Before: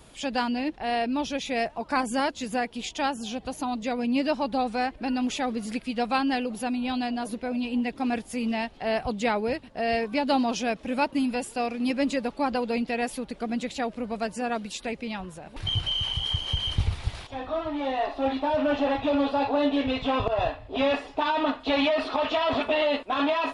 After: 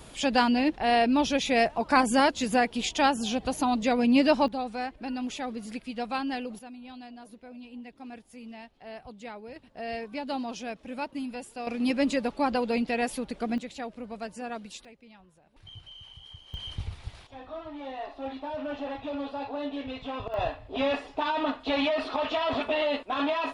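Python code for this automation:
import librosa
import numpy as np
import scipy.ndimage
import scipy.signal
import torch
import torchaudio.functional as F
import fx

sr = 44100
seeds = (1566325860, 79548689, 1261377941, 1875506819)

y = fx.gain(x, sr, db=fx.steps((0.0, 4.0), (4.48, -6.0), (6.59, -16.0), (9.56, -9.0), (11.67, 0.0), (13.58, -7.5), (14.85, -20.0), (16.54, -10.0), (20.34, -3.0)))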